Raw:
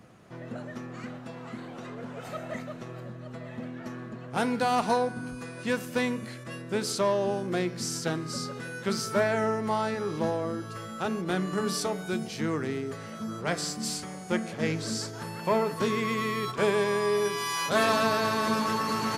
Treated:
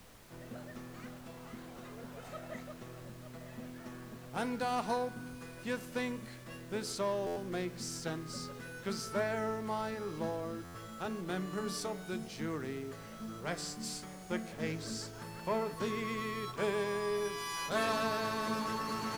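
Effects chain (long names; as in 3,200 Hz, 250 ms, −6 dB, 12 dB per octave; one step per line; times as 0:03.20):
background noise pink −49 dBFS
buffer that repeats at 0:07.26/0:10.64, samples 512, times 8
level −8.5 dB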